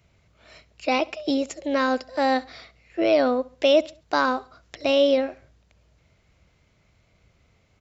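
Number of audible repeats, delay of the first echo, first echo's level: 2, 68 ms, -22.0 dB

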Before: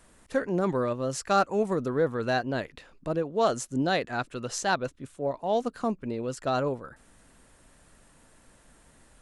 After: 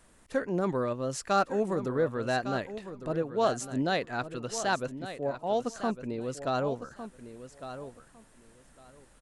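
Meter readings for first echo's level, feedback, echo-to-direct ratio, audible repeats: -11.5 dB, 18%, -11.5 dB, 2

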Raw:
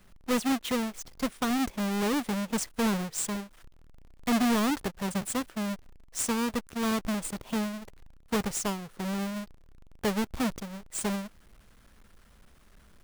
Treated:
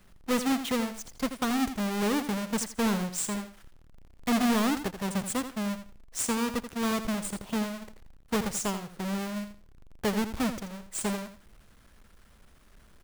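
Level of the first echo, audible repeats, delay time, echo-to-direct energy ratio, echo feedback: -10.5 dB, 2, 83 ms, -10.5 dB, 20%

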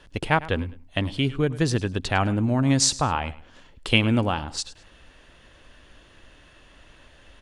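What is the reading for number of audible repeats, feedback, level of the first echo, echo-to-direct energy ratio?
2, 27%, -18.0 dB, -17.5 dB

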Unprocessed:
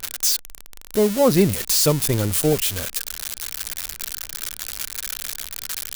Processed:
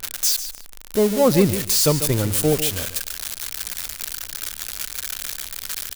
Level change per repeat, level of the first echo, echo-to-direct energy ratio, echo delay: -15.5 dB, -11.5 dB, -11.5 dB, 145 ms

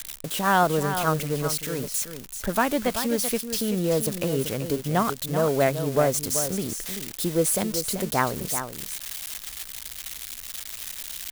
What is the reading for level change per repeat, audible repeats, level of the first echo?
no regular repeats, 1, -9.0 dB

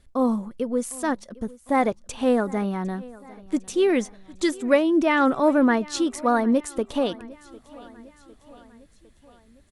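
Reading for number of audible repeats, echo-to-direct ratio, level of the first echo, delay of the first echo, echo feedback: 3, -20.0 dB, -21.5 dB, 754 ms, 56%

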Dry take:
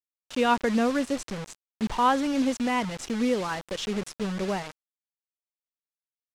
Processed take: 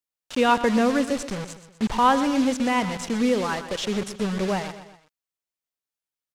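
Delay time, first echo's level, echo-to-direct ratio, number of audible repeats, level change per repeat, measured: 124 ms, -12.5 dB, -11.5 dB, 3, -6.0 dB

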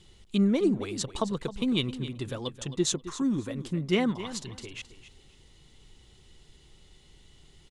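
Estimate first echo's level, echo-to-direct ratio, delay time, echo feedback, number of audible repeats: -13.5 dB, -13.5 dB, 266 ms, 22%, 2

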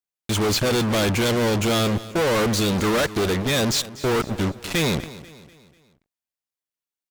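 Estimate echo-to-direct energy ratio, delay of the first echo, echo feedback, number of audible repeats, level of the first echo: -16.0 dB, 245 ms, 45%, 3, -17.0 dB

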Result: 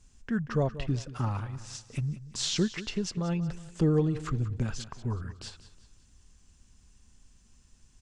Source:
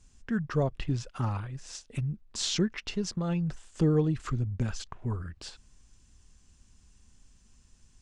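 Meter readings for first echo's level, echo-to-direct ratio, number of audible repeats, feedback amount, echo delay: -15.0 dB, -14.0 dB, 3, 40%, 184 ms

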